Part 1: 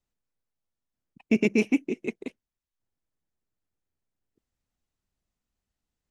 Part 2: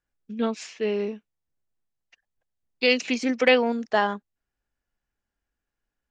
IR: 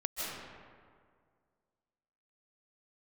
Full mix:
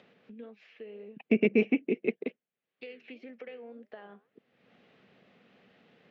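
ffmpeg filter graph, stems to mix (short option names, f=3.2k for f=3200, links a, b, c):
-filter_complex "[0:a]acompressor=threshold=-21dB:ratio=6,volume=2dB[a];[1:a]acompressor=threshold=-24dB:ratio=5,flanger=delay=4.8:depth=8.2:regen=79:speed=1.8:shape=sinusoidal,volume=-17.5dB[b];[a][b]amix=inputs=2:normalize=0,highpass=f=170:w=0.5412,highpass=f=170:w=1.3066,equalizer=f=310:t=q:w=4:g=-6,equalizer=f=470:t=q:w=4:g=6,equalizer=f=960:t=q:w=4:g=-9,equalizer=f=1.4k:t=q:w=4:g=-3,lowpass=f=3k:w=0.5412,lowpass=f=3k:w=1.3066,acompressor=mode=upward:threshold=-39dB:ratio=2.5"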